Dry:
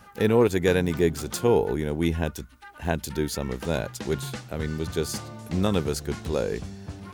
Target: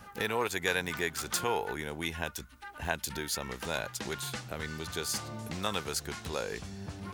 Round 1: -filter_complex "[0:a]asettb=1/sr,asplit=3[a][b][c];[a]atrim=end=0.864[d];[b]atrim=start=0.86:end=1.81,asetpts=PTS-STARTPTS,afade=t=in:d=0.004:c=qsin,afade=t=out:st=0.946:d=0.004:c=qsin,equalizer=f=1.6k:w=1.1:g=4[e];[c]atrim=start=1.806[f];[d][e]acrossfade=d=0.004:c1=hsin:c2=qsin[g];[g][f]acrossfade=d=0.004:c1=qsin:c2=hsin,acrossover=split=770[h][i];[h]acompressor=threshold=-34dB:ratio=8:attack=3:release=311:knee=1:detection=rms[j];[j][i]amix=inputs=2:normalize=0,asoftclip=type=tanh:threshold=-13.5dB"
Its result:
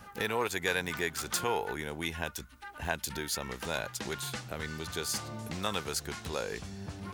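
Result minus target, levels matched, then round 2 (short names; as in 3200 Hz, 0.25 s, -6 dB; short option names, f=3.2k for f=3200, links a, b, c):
soft clip: distortion +15 dB
-filter_complex "[0:a]asettb=1/sr,asplit=3[a][b][c];[a]atrim=end=0.864[d];[b]atrim=start=0.86:end=1.81,asetpts=PTS-STARTPTS,afade=t=in:d=0.004:c=qsin,afade=t=out:st=0.946:d=0.004:c=qsin,equalizer=f=1.6k:w=1.1:g=4[e];[c]atrim=start=1.806[f];[d][e]acrossfade=d=0.004:c1=hsin:c2=qsin[g];[g][f]acrossfade=d=0.004:c1=qsin:c2=hsin,acrossover=split=770[h][i];[h]acompressor=threshold=-34dB:ratio=8:attack=3:release=311:knee=1:detection=rms[j];[j][i]amix=inputs=2:normalize=0,asoftclip=type=tanh:threshold=-5dB"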